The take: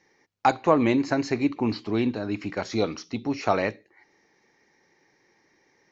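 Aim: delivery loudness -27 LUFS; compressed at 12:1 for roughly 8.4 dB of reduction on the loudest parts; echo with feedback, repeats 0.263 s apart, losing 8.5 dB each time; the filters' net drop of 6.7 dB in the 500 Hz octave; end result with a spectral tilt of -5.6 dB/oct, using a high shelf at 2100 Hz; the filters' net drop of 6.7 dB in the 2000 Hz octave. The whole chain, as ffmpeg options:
-af "equalizer=f=500:t=o:g=-8.5,equalizer=f=2k:t=o:g=-6.5,highshelf=f=2.1k:g=-3,acompressor=threshold=-27dB:ratio=12,aecho=1:1:263|526|789|1052:0.376|0.143|0.0543|0.0206,volume=7dB"

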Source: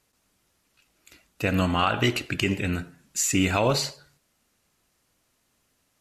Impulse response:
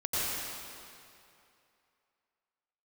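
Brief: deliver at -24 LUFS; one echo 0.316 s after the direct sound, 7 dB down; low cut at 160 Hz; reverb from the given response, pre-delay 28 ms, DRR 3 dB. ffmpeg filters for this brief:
-filter_complex "[0:a]highpass=160,aecho=1:1:316:0.447,asplit=2[a][b];[1:a]atrim=start_sample=2205,adelay=28[c];[b][c]afir=irnorm=-1:irlink=0,volume=-12dB[d];[a][d]amix=inputs=2:normalize=0,volume=-0.5dB"

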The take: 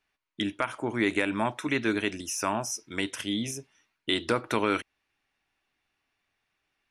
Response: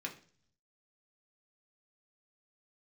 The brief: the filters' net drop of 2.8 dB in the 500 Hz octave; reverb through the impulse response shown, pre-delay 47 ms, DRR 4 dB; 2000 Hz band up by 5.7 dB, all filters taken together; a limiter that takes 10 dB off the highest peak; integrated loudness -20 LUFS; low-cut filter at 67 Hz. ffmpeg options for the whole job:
-filter_complex "[0:a]highpass=67,equalizer=f=500:t=o:g=-4,equalizer=f=2k:t=o:g=7,alimiter=limit=-17.5dB:level=0:latency=1,asplit=2[a][b];[1:a]atrim=start_sample=2205,adelay=47[c];[b][c]afir=irnorm=-1:irlink=0,volume=-4.5dB[d];[a][d]amix=inputs=2:normalize=0,volume=10dB"

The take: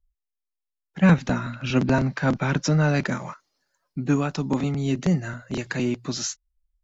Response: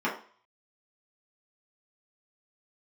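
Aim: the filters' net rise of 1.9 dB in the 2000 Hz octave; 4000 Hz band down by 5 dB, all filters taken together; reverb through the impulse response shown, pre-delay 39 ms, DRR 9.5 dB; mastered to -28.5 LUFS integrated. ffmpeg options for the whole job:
-filter_complex "[0:a]equalizer=f=2k:t=o:g=4.5,equalizer=f=4k:t=o:g=-8.5,asplit=2[a][b];[1:a]atrim=start_sample=2205,adelay=39[c];[b][c]afir=irnorm=-1:irlink=0,volume=-20.5dB[d];[a][d]amix=inputs=2:normalize=0,volume=-5dB"

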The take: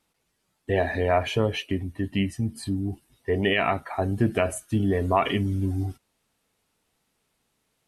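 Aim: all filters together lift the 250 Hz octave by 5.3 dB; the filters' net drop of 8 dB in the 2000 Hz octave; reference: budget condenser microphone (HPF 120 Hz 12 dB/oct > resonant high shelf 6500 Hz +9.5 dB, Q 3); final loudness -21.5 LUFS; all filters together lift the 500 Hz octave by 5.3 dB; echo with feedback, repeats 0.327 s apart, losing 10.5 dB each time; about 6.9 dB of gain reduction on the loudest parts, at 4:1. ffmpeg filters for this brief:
-af "equalizer=f=250:t=o:g=5.5,equalizer=f=500:t=o:g=6,equalizer=f=2k:t=o:g=-9,acompressor=threshold=-21dB:ratio=4,highpass=120,highshelf=f=6.5k:t=q:w=3:g=9.5,aecho=1:1:327|654|981:0.299|0.0896|0.0269,volume=5dB"

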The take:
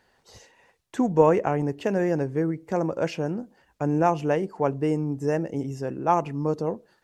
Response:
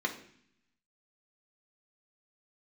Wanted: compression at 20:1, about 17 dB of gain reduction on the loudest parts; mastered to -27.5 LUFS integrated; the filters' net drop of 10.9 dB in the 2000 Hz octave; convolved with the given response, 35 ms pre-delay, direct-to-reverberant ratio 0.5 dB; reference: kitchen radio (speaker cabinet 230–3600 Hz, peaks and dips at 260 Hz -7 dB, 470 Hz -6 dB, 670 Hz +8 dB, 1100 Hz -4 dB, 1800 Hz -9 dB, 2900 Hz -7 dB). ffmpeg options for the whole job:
-filter_complex "[0:a]equalizer=f=2k:t=o:g=-8,acompressor=threshold=-29dB:ratio=20,asplit=2[a][b];[1:a]atrim=start_sample=2205,adelay=35[c];[b][c]afir=irnorm=-1:irlink=0,volume=-7dB[d];[a][d]amix=inputs=2:normalize=0,highpass=230,equalizer=f=260:t=q:w=4:g=-7,equalizer=f=470:t=q:w=4:g=-6,equalizer=f=670:t=q:w=4:g=8,equalizer=f=1.1k:t=q:w=4:g=-4,equalizer=f=1.8k:t=q:w=4:g=-9,equalizer=f=2.9k:t=q:w=4:g=-7,lowpass=f=3.6k:w=0.5412,lowpass=f=3.6k:w=1.3066,volume=7dB"

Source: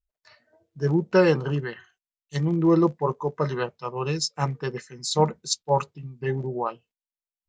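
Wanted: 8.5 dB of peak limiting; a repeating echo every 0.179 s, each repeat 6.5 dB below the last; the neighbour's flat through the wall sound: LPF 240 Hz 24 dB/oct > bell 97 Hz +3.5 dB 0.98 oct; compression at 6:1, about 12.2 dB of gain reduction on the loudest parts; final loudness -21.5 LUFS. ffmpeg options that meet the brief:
-af "acompressor=threshold=-28dB:ratio=6,alimiter=limit=-24dB:level=0:latency=1,lowpass=f=240:w=0.5412,lowpass=f=240:w=1.3066,equalizer=f=97:t=o:w=0.98:g=3.5,aecho=1:1:179|358|537|716|895|1074:0.473|0.222|0.105|0.0491|0.0231|0.0109,volume=16.5dB"

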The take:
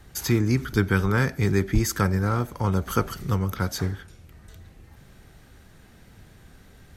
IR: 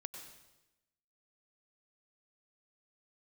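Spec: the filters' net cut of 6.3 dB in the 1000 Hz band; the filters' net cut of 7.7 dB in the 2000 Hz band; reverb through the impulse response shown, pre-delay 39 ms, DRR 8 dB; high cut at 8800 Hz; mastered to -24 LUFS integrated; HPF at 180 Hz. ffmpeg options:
-filter_complex "[0:a]highpass=180,lowpass=8.8k,equalizer=f=1k:t=o:g=-5,equalizer=f=2k:t=o:g=-8.5,asplit=2[a][b];[1:a]atrim=start_sample=2205,adelay=39[c];[b][c]afir=irnorm=-1:irlink=0,volume=-5dB[d];[a][d]amix=inputs=2:normalize=0,volume=4.5dB"

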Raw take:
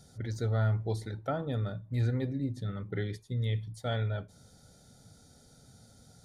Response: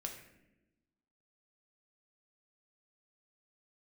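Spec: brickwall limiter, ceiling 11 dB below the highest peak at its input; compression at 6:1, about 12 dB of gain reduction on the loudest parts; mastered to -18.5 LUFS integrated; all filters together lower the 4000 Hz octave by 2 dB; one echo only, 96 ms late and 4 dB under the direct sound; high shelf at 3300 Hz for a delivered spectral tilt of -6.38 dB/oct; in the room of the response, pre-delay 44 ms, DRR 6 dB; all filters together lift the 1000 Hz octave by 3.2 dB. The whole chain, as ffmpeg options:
-filter_complex "[0:a]equalizer=f=1k:t=o:g=5,highshelf=f=3.3k:g=5,equalizer=f=4k:t=o:g=-6,acompressor=threshold=-37dB:ratio=6,alimiter=level_in=11dB:limit=-24dB:level=0:latency=1,volume=-11dB,aecho=1:1:96:0.631,asplit=2[a][b];[1:a]atrim=start_sample=2205,adelay=44[c];[b][c]afir=irnorm=-1:irlink=0,volume=-4.5dB[d];[a][d]amix=inputs=2:normalize=0,volume=24dB"

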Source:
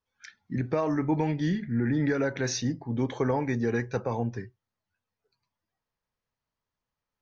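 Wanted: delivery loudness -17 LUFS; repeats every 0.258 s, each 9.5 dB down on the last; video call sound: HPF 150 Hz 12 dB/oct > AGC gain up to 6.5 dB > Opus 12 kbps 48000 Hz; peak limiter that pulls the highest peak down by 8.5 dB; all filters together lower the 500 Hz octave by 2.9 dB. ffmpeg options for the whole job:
-af "equalizer=f=500:t=o:g=-3.5,alimiter=level_in=2dB:limit=-24dB:level=0:latency=1,volume=-2dB,highpass=150,aecho=1:1:258|516|774|1032:0.335|0.111|0.0365|0.012,dynaudnorm=m=6.5dB,volume=19dB" -ar 48000 -c:a libopus -b:a 12k

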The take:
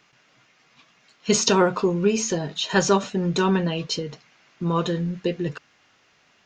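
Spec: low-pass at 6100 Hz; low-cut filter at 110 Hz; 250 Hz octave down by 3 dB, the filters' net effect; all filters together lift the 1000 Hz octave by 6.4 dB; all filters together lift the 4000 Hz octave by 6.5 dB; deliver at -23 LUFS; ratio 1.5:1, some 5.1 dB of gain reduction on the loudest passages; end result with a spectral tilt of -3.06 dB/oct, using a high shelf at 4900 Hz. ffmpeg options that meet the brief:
-af "highpass=110,lowpass=6.1k,equalizer=f=250:t=o:g=-5,equalizer=f=1k:t=o:g=7,equalizer=f=4k:t=o:g=4.5,highshelf=f=4.9k:g=8.5,acompressor=threshold=-27dB:ratio=1.5,volume=2dB"

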